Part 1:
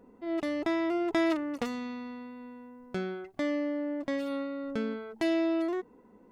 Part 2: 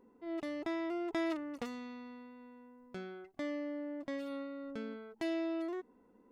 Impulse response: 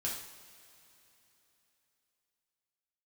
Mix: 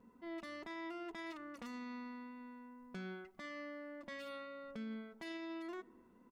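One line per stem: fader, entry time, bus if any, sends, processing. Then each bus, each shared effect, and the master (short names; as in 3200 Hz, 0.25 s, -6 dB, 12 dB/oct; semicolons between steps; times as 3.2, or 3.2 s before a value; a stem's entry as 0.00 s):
-14.0 dB, 0.00 s, send -13 dB, LPF 2800 Hz; compressor, threshold -30 dBFS, peak gain reduction 7.5 dB
+0.5 dB, 3.7 ms, no send, elliptic band-stop 250–1000 Hz; vocal rider within 5 dB 2 s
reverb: on, pre-delay 3 ms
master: limiter -38 dBFS, peak gain reduction 9.5 dB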